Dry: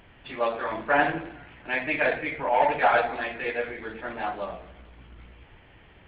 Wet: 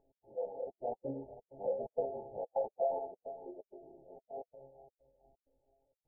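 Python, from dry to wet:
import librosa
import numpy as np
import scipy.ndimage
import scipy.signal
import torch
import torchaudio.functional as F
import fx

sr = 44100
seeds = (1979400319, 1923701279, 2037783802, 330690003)

y = np.r_[np.sort(x[:len(x) // 16 * 16].reshape(-1, 16), axis=1).ravel(), x[len(x) // 16 * 16:]]
y = fx.doppler_pass(y, sr, speed_mps=26, closest_m=17.0, pass_at_s=1.59)
y = fx.comb_fb(y, sr, f0_hz=170.0, decay_s=0.46, harmonics='all', damping=0.0, mix_pct=90)
y = fx.echo_feedback(y, sr, ms=452, feedback_pct=37, wet_db=-17.0)
y = fx.step_gate(y, sr, bpm=129, pattern='x.xxxx.x.xxx.xx', floor_db=-60.0, edge_ms=4.5)
y = fx.brickwall_lowpass(y, sr, high_hz=1100.0)
y = fx.peak_eq(y, sr, hz=520.0, db=12.5, octaves=0.73)
y = fx.pitch_keep_formants(y, sr, semitones=-4.0)
y = F.gain(torch.from_numpy(y), 1.0).numpy()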